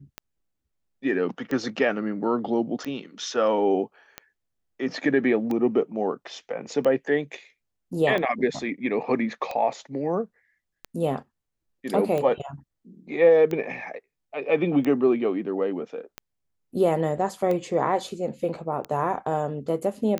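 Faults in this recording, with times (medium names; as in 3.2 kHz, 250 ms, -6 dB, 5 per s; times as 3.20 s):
tick 45 rpm -17 dBFS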